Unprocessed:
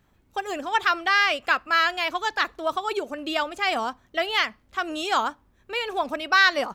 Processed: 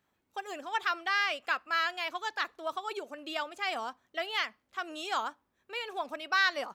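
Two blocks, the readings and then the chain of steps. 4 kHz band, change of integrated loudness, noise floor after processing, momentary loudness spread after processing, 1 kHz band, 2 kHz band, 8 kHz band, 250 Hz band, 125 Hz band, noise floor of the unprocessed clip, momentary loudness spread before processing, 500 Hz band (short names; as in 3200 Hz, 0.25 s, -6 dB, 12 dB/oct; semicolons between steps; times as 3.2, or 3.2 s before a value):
-8.5 dB, -9.0 dB, -79 dBFS, 12 LU, -9.0 dB, -8.5 dB, -8.5 dB, -12.5 dB, n/a, -63 dBFS, 11 LU, -10.0 dB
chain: HPF 370 Hz 6 dB/oct; gain -8.5 dB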